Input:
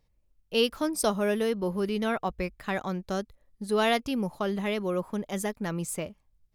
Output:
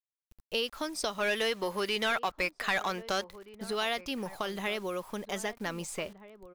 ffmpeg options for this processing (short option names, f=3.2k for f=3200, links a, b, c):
-filter_complex "[0:a]equalizer=f=130:w=0.41:g=-11,acrossover=split=1900|6200[a][b][c];[a]acompressor=threshold=-38dB:ratio=4[d];[b]acompressor=threshold=-38dB:ratio=4[e];[c]acompressor=threshold=-57dB:ratio=4[f];[d][e][f]amix=inputs=3:normalize=0,asettb=1/sr,asplit=3[g][h][i];[g]atrim=end=1.184[j];[h]atrim=start=1.18:end=3.64,asetpts=PTS-STARTPTS,afade=t=in:d=0.004:c=qsin,afade=t=out:st=2.456:d=0.004:c=qsin,asplit=2[k][l];[l]highpass=f=720:p=1,volume=14dB,asoftclip=type=tanh:threshold=-23.5dB[m];[k][m]amix=inputs=2:normalize=0,lowpass=f=6.4k:p=1,volume=-6dB[n];[i]atrim=start=3.636[o];[j][n]acrossfade=d=0.004:c1=hsin:c2=qsin[p];[p][o]acrossfade=d=0.004:c1=qsin:c2=hsin,acrusher=bits=9:mix=0:aa=0.000001,asplit=2[q][r];[r]adelay=1574,volume=-15dB,highshelf=f=4k:g=-35.4[s];[q][s]amix=inputs=2:normalize=0,volume=4.5dB"